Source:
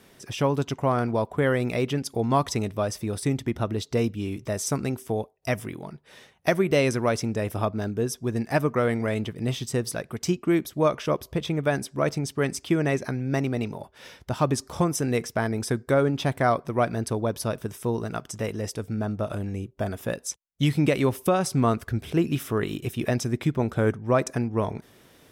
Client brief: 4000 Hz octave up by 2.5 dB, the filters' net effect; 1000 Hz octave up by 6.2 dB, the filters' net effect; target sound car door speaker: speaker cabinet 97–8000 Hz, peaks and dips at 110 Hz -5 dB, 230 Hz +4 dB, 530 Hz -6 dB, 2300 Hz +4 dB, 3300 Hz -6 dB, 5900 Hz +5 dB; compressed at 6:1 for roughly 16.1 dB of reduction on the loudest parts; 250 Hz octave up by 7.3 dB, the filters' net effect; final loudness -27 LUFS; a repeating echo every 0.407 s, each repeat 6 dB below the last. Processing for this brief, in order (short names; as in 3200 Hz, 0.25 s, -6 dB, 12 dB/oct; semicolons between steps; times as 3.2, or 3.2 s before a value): bell 250 Hz +6.5 dB; bell 1000 Hz +8 dB; bell 4000 Hz +4 dB; compressor 6:1, threshold -30 dBFS; speaker cabinet 97–8000 Hz, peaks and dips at 110 Hz -5 dB, 230 Hz +4 dB, 530 Hz -6 dB, 2300 Hz +4 dB, 3300 Hz -6 dB, 5900 Hz +5 dB; feedback echo 0.407 s, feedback 50%, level -6 dB; gain +6 dB